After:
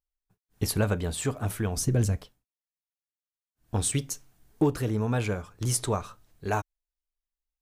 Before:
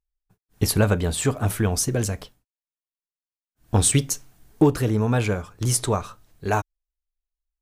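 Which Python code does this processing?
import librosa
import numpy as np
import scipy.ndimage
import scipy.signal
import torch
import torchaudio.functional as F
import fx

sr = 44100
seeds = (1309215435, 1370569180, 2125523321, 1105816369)

y = fx.low_shelf(x, sr, hz=260.0, db=11.0, at=(1.76, 2.18))
y = fx.rider(y, sr, range_db=10, speed_s=2.0)
y = y * 10.0 ** (-5.5 / 20.0)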